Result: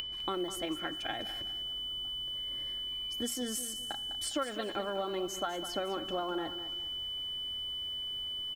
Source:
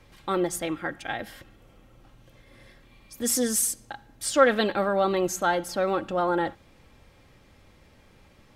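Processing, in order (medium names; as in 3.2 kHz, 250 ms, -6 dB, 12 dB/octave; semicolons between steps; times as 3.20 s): comb 2.9 ms, depth 36%; whistle 3 kHz -34 dBFS; upward compressor, threshold -29 dBFS; transient shaper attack +7 dB, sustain +3 dB; compression 6:1, threshold -26 dBFS, peak gain reduction 16.5 dB; treble shelf 2.9 kHz -3.5 dB; bit-crushed delay 203 ms, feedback 35%, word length 8-bit, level -11 dB; trim -5.5 dB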